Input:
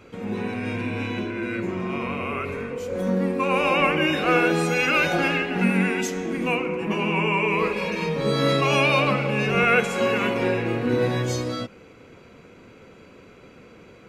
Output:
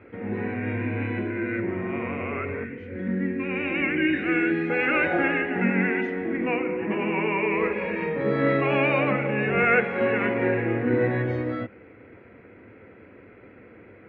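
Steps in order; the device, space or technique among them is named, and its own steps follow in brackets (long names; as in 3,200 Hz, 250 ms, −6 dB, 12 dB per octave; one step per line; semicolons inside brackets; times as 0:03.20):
0:02.64–0:04.70: flat-topped bell 760 Hz −13 dB
bass cabinet (loudspeaker in its box 61–2,200 Hz, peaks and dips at 100 Hz +5 dB, 160 Hz −8 dB, 310 Hz +4 dB, 1,100 Hz −6 dB, 1,900 Hz +8 dB)
level −1 dB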